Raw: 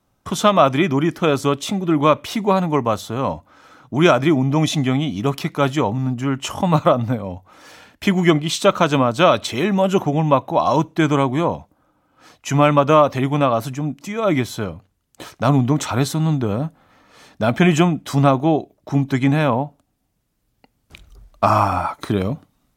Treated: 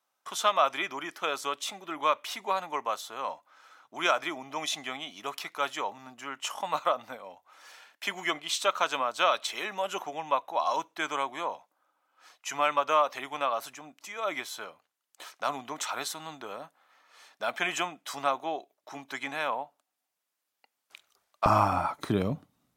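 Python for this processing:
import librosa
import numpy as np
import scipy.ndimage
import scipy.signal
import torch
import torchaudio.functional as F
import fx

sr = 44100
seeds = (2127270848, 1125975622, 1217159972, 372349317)

y = fx.highpass(x, sr, hz=fx.steps((0.0, 840.0), (21.46, 98.0)), slope=12)
y = y * 10.0 ** (-7.0 / 20.0)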